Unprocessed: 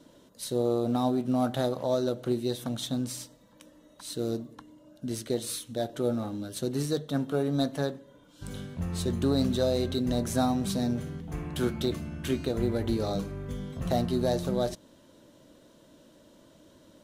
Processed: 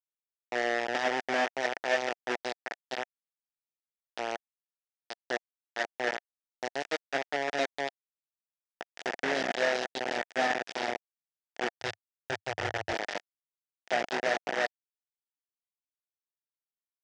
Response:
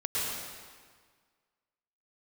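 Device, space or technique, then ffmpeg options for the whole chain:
hand-held game console: -filter_complex "[0:a]acrusher=bits=3:mix=0:aa=0.000001,highpass=450,equalizer=frequency=710:width_type=q:width=4:gain=5,equalizer=frequency=1100:width_type=q:width=4:gain=-10,equalizer=frequency=1800:width_type=q:width=4:gain=8,equalizer=frequency=4100:width_type=q:width=4:gain=-8,lowpass=frequency=5400:width=0.5412,lowpass=frequency=5400:width=1.3066,asettb=1/sr,asplit=3[link_01][link_02][link_03];[link_01]atrim=end=11.804[link_04];[link_02]atrim=start=11.8:end=12.93,asetpts=PTS-STARTPTS,afade=type=in:duration=0.004:curve=qsin,afade=type=out:start_time=1.126:duration=0.004:curve=qsin,lowshelf=frequency=150:width_type=q:width=3:gain=14[link_05];[link_03]atrim=start=12.926[link_06];[link_04][link_05]acrossfade=duration=0.004:curve1=hsin:curve2=qsin[link_07];[link_07][link_06]acrossfade=duration=0.004:curve1=qsin:curve2=hsin,volume=-2dB"

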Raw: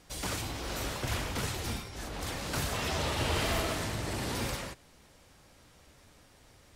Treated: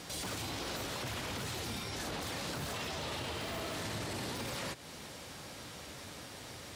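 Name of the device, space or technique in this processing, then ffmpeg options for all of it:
broadcast voice chain: -af "highpass=100,deesser=0.85,acompressor=threshold=-48dB:ratio=4,equalizer=frequency=3900:width_type=o:width=0.87:gain=3,alimiter=level_in=18.5dB:limit=-24dB:level=0:latency=1:release=16,volume=-18.5dB,volume=12dB"

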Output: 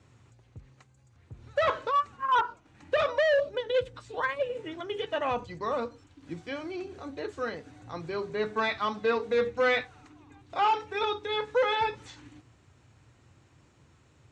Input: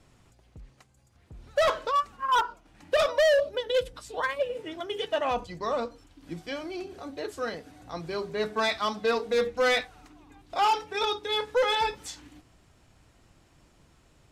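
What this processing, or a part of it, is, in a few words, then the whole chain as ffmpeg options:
car door speaker: -filter_complex "[0:a]acrossover=split=4100[link_01][link_02];[link_02]acompressor=threshold=-55dB:ratio=4:attack=1:release=60[link_03];[link_01][link_03]amix=inputs=2:normalize=0,highpass=83,equalizer=frequency=87:width_type=q:width=4:gain=6,equalizer=frequency=120:width_type=q:width=4:gain=8,equalizer=frequency=180:width_type=q:width=4:gain=-4,equalizer=frequency=670:width_type=q:width=4:gain=-5,equalizer=frequency=3200:width_type=q:width=4:gain=-3,equalizer=frequency=5000:width_type=q:width=4:gain=-6,lowpass=frequency=7800:width=0.5412,lowpass=frequency=7800:width=1.3066"

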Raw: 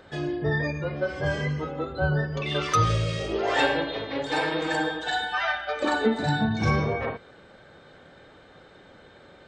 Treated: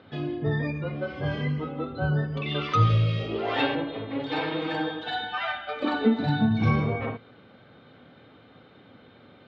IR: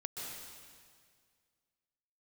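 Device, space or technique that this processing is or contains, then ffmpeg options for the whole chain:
guitar cabinet: -filter_complex "[0:a]asettb=1/sr,asplit=3[link_01][link_02][link_03];[link_01]atrim=end=3.754[link_04];[link_02]atrim=start=3.75:end=4.2,asetpts=PTS-STARTPTS,afade=type=in:duration=0.004:curve=qsin,afade=type=out:start_time=0.446:duration=0.004:curve=qsin,lowpass=frequency=1900:poles=1[link_05];[link_03]atrim=start=4.196[link_06];[link_04][link_05]acrossfade=duration=0.004:curve1=hsin:curve2=qsin[link_07];[link_07][link_06]acrossfade=duration=0.004:curve1=qsin:curve2=hsin,highpass=100,equalizer=frequency=110:width_type=q:width=4:gain=7,equalizer=frequency=250:width_type=q:width=4:gain=7,equalizer=frequency=370:width_type=q:width=4:gain=-4,equalizer=frequency=580:width_type=q:width=4:gain=-5,equalizer=frequency=900:width_type=q:width=4:gain=-4,equalizer=frequency=1700:width_type=q:width=4:gain=-8,lowpass=frequency=3800:width=0.5412,lowpass=frequency=3800:width=1.3066"

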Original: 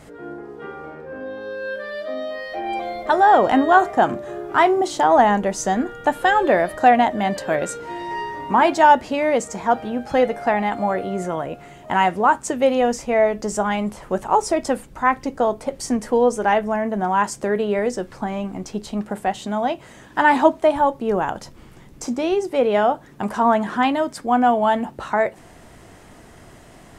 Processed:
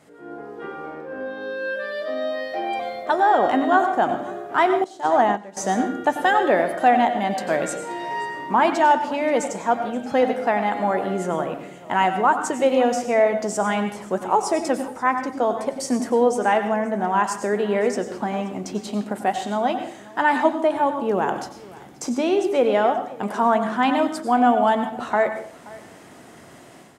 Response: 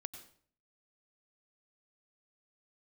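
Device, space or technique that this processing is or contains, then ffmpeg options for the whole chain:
far laptop microphone: -filter_complex "[1:a]atrim=start_sample=2205[link_01];[0:a][link_01]afir=irnorm=-1:irlink=0,highpass=160,dynaudnorm=framelen=200:gausssize=3:maxgain=9dB,asettb=1/sr,asplit=3[link_02][link_03][link_04];[link_02]atrim=end=4.844[link_05];[link_03]atrim=start=4.84:end=5.57,asetpts=PTS-STARTPTS,afade=type=in:duration=0.004:curve=qsin,afade=type=out:start_time=0.726:duration=0.004:curve=qsin,agate=range=-15dB:threshold=-13dB:ratio=16:detection=peak[link_06];[link_04]atrim=start=5.566[link_07];[link_05][link_06]acrossfade=duration=0.004:curve1=hsin:curve2=qsin[link_08];[link_08][link_07]acrossfade=duration=0.004:curve1=qsin:curve2=hsin,aecho=1:1:529:0.0891,volume=-4.5dB"

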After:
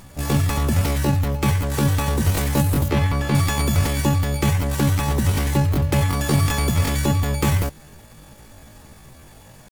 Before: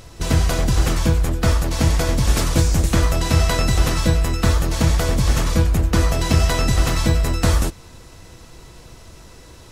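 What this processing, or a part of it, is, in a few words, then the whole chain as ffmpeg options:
chipmunk voice: -filter_complex "[0:a]asetrate=76340,aresample=44100,atempo=0.577676,asettb=1/sr,asplit=3[link_01][link_02][link_03];[link_01]atrim=end=2.884[link_04];[link_02]atrim=start=2.88:end=3.35,asetpts=PTS-STARTPTS,afade=type=in:duration=0.004:curve=qsin,afade=type=out:start_time=0.466:duration=0.004:curve=qsin,acrossover=split=4200[link_05][link_06];[link_06]acompressor=threshold=-40dB:ratio=4:attack=1:release=60[link_07];[link_05][link_07]amix=inputs=2:normalize=0[link_08];[link_03]atrim=start=3.346[link_09];[link_04][link_08]acrossfade=duration=0.004:curve1=hsin:curve2=qsin[link_10];[link_10][link_09]acrossfade=duration=0.004:curve1=qsin:curve2=hsin,volume=-2.5dB"

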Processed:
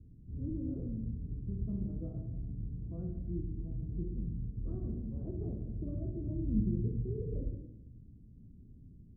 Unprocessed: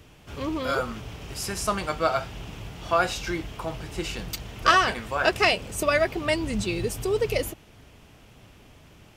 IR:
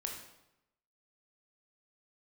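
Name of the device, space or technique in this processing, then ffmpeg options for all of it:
next room: -filter_complex "[0:a]lowpass=frequency=250:width=0.5412,lowpass=frequency=250:width=1.3066[link_01];[1:a]atrim=start_sample=2205[link_02];[link_01][link_02]afir=irnorm=-1:irlink=0,asettb=1/sr,asplit=3[link_03][link_04][link_05];[link_03]atrim=end=2.974[link_06];[link_04]atrim=start=2.97:end=3.83,asetpts=PTS-STARTPTS,afade=type=in:duration=0.004:curve=qsin,afade=type=out:start_time=0.856:duration=0.004:curve=qsin,highshelf=frequency=1500:width_type=q:width=1.5:gain=10[link_07];[link_05]atrim=start=3.826[link_08];[link_06][link_07]acrossfade=duration=0.004:curve1=hsin:curve2=qsin[link_09];[link_09][link_08]acrossfade=duration=0.004:curve1=qsin:curve2=hsin"

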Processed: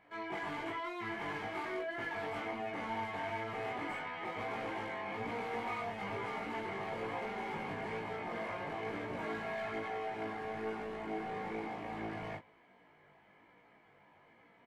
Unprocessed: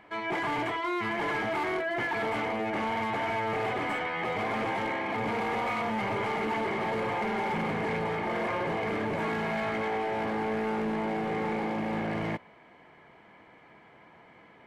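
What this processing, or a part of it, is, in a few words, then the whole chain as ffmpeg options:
double-tracked vocal: -filter_complex "[0:a]asplit=2[link_01][link_02];[link_02]adelay=21,volume=-4dB[link_03];[link_01][link_03]amix=inputs=2:normalize=0,flanger=delay=16.5:depth=3.4:speed=1.1,volume=-7.5dB"

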